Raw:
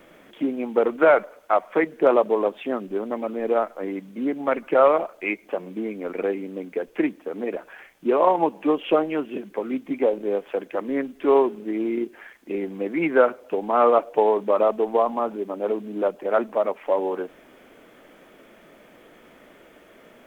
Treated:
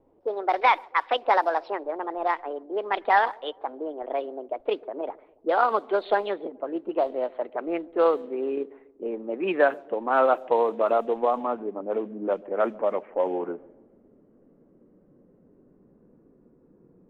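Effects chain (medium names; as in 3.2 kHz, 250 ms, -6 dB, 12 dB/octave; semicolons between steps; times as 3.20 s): gliding tape speed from 161% -> 76%; level-controlled noise filter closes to 330 Hz, open at -15 dBFS; feedback echo behind a low-pass 141 ms, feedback 49%, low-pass 630 Hz, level -21 dB; trim -3 dB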